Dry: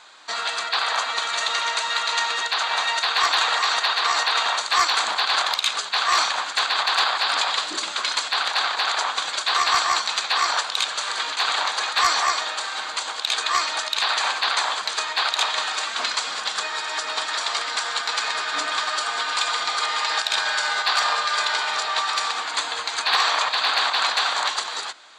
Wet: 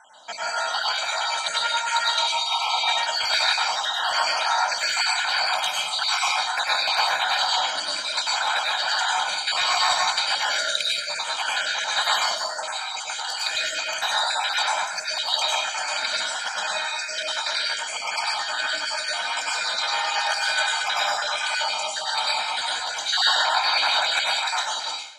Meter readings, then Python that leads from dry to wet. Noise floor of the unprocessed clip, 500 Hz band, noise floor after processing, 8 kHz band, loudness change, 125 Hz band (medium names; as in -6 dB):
-32 dBFS, +1.0 dB, -31 dBFS, -0.5 dB, -1.0 dB, no reading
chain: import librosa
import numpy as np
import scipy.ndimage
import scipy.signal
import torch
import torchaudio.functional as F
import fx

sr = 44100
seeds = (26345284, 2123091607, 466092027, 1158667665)

y = fx.spec_dropout(x, sr, seeds[0], share_pct=60)
y = scipy.signal.sosfilt(scipy.signal.butter(2, 58.0, 'highpass', fs=sr, output='sos'), y)
y = fx.notch(y, sr, hz=1600.0, q=28.0)
y = y + 0.82 * np.pad(y, (int(1.3 * sr / 1000.0), 0))[:len(y)]
y = fx.rev_plate(y, sr, seeds[1], rt60_s=0.58, hf_ratio=0.9, predelay_ms=85, drr_db=-4.0)
y = F.gain(torch.from_numpy(y), -3.5).numpy()